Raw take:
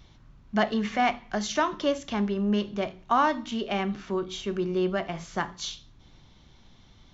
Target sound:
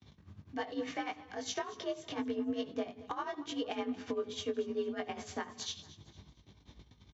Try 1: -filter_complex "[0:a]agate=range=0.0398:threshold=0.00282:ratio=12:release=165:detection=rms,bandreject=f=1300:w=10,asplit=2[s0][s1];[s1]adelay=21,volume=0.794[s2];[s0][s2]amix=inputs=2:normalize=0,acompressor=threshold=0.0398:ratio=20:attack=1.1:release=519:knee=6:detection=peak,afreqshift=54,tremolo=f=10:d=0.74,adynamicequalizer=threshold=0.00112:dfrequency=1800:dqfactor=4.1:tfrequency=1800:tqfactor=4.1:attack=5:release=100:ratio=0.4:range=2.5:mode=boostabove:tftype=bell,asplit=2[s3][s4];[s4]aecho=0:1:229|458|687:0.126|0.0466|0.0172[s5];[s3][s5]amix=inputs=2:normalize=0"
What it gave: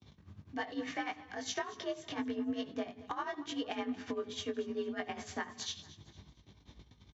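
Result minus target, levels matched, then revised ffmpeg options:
2 kHz band +3.5 dB
-filter_complex "[0:a]agate=range=0.0398:threshold=0.00282:ratio=12:release=165:detection=rms,bandreject=f=1300:w=10,asplit=2[s0][s1];[s1]adelay=21,volume=0.794[s2];[s0][s2]amix=inputs=2:normalize=0,acompressor=threshold=0.0398:ratio=20:attack=1.1:release=519:knee=6:detection=peak,afreqshift=54,tremolo=f=10:d=0.74,adynamicequalizer=threshold=0.00112:dfrequency=480:dqfactor=4.1:tfrequency=480:tqfactor=4.1:attack=5:release=100:ratio=0.4:range=2.5:mode=boostabove:tftype=bell,asplit=2[s3][s4];[s4]aecho=0:1:229|458|687:0.126|0.0466|0.0172[s5];[s3][s5]amix=inputs=2:normalize=0"

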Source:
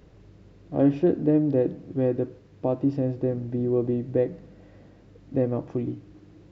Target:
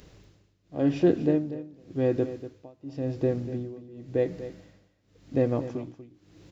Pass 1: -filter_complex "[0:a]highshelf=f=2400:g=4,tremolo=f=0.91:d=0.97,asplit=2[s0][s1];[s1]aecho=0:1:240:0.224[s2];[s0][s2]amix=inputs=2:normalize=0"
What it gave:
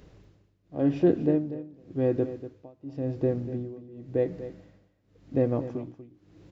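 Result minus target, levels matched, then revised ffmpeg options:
4 kHz band -6.5 dB
-filter_complex "[0:a]highshelf=f=2400:g=14,tremolo=f=0.91:d=0.97,asplit=2[s0][s1];[s1]aecho=0:1:240:0.224[s2];[s0][s2]amix=inputs=2:normalize=0"

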